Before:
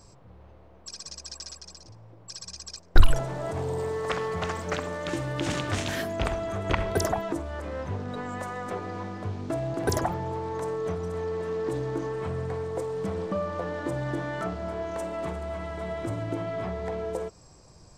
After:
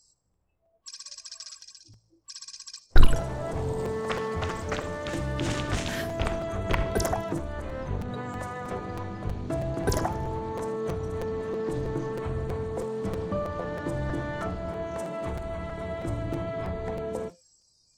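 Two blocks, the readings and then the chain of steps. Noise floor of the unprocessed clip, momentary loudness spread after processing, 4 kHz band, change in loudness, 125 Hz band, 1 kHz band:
-53 dBFS, 12 LU, -1.0 dB, -0.5 dB, +0.5 dB, -1.0 dB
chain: octaver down 1 oct, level -1 dB; de-hum 173.3 Hz, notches 40; spectral noise reduction 25 dB; thin delay 78 ms, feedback 55%, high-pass 4400 Hz, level -17 dB; crackling interface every 0.32 s, samples 256, repeat, from 0.33; gain -1 dB

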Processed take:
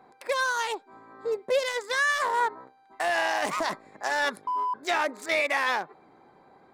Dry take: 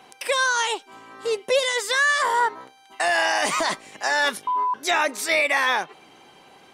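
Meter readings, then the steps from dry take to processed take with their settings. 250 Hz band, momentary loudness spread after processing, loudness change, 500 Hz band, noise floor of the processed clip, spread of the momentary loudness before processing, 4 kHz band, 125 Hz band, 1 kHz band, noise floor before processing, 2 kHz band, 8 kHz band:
-3.5 dB, 8 LU, -5.5 dB, -3.5 dB, -59 dBFS, 8 LU, -8.0 dB, n/a, -4.5 dB, -53 dBFS, -5.5 dB, -10.0 dB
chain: Wiener smoothing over 15 samples; gain -3.5 dB

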